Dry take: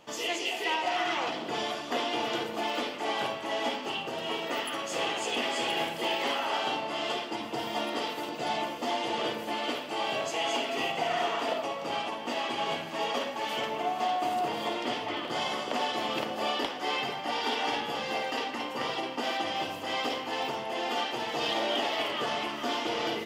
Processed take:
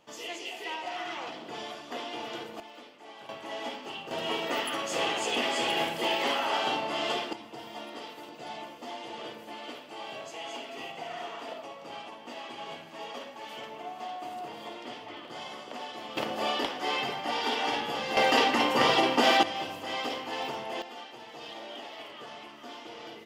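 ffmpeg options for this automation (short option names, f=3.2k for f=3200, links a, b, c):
-af "asetnsamples=n=441:p=0,asendcmd='2.6 volume volume -17dB;3.29 volume volume -6dB;4.11 volume volume 1.5dB;7.33 volume volume -9.5dB;16.17 volume volume 0.5dB;18.17 volume volume 9.5dB;19.43 volume volume -2dB;20.82 volume volume -13dB',volume=-7dB"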